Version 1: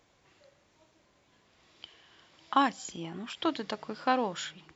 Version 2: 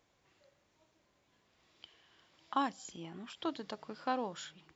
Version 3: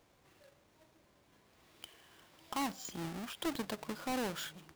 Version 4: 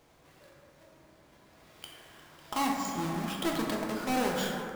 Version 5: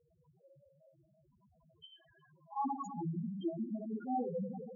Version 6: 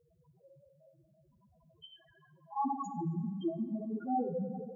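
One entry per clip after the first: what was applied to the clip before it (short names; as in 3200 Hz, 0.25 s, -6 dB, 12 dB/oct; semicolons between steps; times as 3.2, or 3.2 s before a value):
dynamic EQ 2200 Hz, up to -5 dB, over -46 dBFS, Q 1.4; gain -7 dB
half-waves squared off; limiter -30.5 dBFS, peak gain reduction 11.5 dB; gain +1 dB
plate-style reverb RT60 2.6 s, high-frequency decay 0.3×, DRR -2 dB; gain +4 dB
notch comb 300 Hz; loudest bins only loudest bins 2; gain +1 dB
plate-style reverb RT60 2.3 s, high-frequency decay 0.5×, DRR 16.5 dB; gain +2.5 dB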